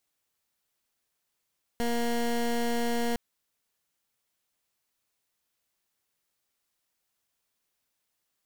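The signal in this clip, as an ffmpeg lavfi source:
ffmpeg -f lavfi -i "aevalsrc='0.0422*(2*lt(mod(236*t,1),0.19)-1)':duration=1.36:sample_rate=44100" out.wav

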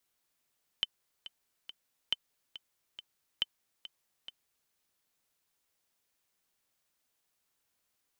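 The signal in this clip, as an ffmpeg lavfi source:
ffmpeg -f lavfi -i "aevalsrc='pow(10,(-15.5-15.5*gte(mod(t,3*60/139),60/139))/20)*sin(2*PI*3060*mod(t,60/139))*exp(-6.91*mod(t,60/139)/0.03)':duration=3.88:sample_rate=44100" out.wav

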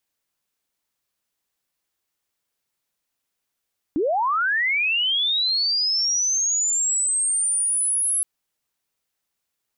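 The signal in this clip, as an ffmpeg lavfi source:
ffmpeg -f lavfi -i "aevalsrc='pow(10,(-18.5-0.5*t/4.27)/20)*sin(2*PI*(270*t+10730*t*t/(2*4.27)))':duration=4.27:sample_rate=44100" out.wav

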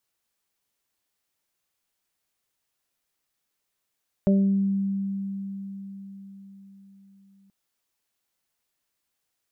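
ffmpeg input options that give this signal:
ffmpeg -f lavfi -i "aevalsrc='0.158*pow(10,-3*t/4.88)*sin(2*PI*196*t)+0.0562*pow(10,-3*t/0.78)*sin(2*PI*392*t)+0.0708*pow(10,-3*t/0.43)*sin(2*PI*588*t)':duration=3.23:sample_rate=44100" out.wav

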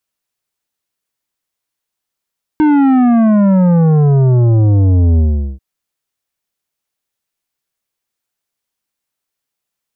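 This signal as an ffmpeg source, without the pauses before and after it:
ffmpeg -f lavfi -i "aevalsrc='0.398*clip((2.99-t)/0.41,0,1)*tanh(3.35*sin(2*PI*310*2.99/log(65/310)*(exp(log(65/310)*t/2.99)-1)))/tanh(3.35)':duration=2.99:sample_rate=44100" out.wav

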